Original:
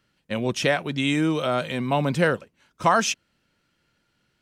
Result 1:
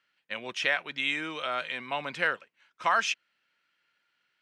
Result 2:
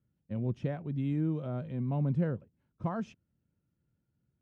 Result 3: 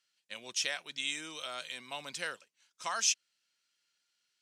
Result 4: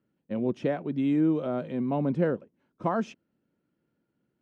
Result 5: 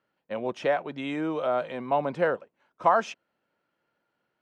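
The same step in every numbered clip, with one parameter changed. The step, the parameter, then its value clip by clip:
band-pass filter, frequency: 2.1 kHz, 100 Hz, 6.4 kHz, 280 Hz, 720 Hz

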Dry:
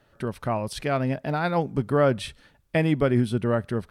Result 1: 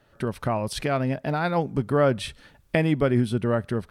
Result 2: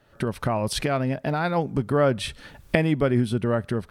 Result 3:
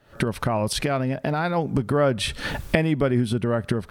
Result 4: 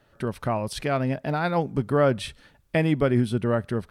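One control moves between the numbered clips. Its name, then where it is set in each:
recorder AGC, rising by: 13 dB/s, 34 dB/s, 89 dB/s, 5 dB/s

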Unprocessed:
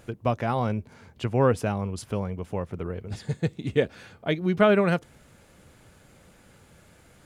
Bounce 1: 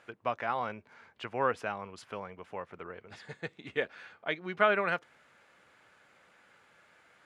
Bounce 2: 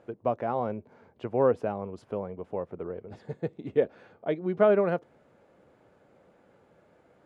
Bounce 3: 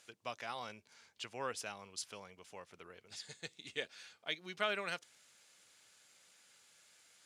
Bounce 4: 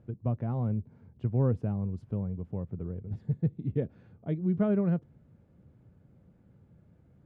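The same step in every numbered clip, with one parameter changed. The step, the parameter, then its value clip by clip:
band-pass filter, frequency: 1.6 kHz, 540 Hz, 5.5 kHz, 130 Hz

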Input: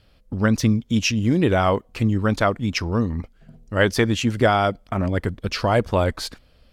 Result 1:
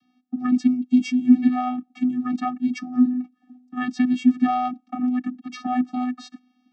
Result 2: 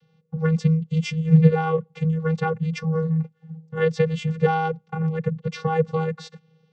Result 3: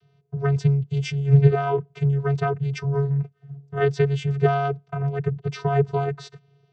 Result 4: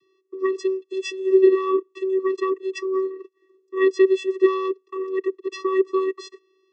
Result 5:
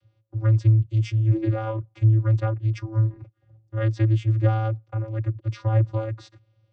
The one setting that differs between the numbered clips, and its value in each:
vocoder, frequency: 250 Hz, 160 Hz, 140 Hz, 380 Hz, 110 Hz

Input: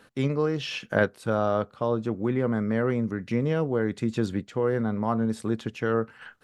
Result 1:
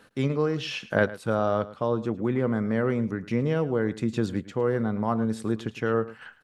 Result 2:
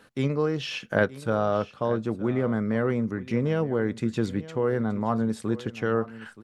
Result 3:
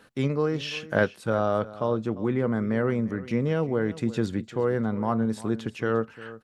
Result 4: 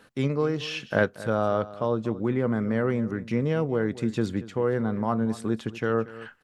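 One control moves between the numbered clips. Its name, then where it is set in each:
delay, time: 108 ms, 924 ms, 350 ms, 233 ms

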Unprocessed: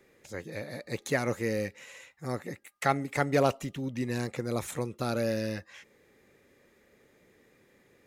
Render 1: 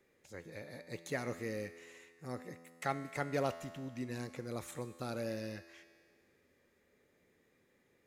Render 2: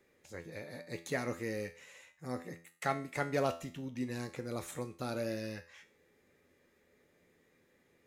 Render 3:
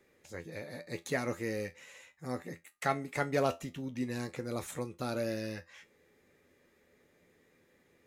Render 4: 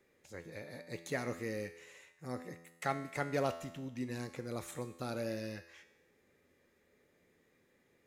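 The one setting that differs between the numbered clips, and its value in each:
feedback comb, decay: 2 s, 0.41 s, 0.18 s, 0.95 s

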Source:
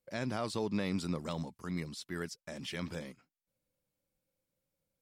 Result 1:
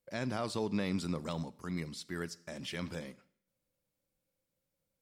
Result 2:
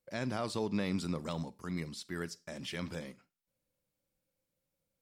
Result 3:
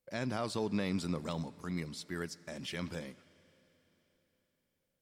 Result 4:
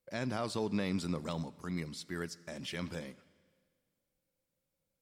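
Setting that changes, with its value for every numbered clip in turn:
Schroeder reverb, RT60: 0.65 s, 0.3 s, 4.1 s, 1.8 s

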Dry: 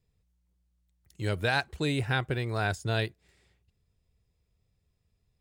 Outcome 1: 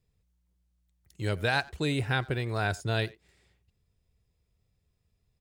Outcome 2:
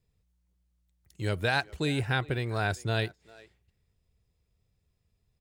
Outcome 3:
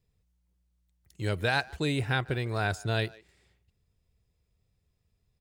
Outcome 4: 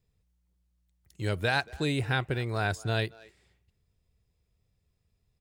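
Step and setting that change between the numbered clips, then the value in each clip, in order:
speakerphone echo, time: 90 ms, 400 ms, 150 ms, 230 ms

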